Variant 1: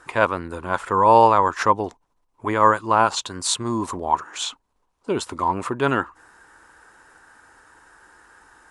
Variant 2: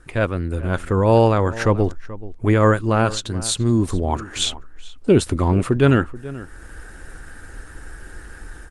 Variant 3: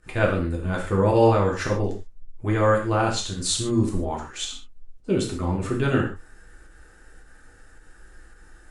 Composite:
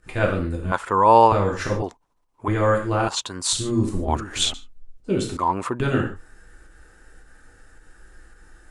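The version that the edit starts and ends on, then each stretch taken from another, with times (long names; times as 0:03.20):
3
0:00.72–0:01.32: punch in from 1
0:01.82–0:02.48: punch in from 1
0:03.08–0:03.53: punch in from 1
0:04.08–0:04.54: punch in from 2
0:05.37–0:05.80: punch in from 1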